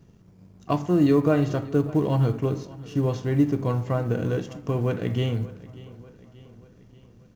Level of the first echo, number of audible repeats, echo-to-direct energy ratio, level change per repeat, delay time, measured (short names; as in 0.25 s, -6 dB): -19.5 dB, 3, -18.0 dB, -5.0 dB, 0.586 s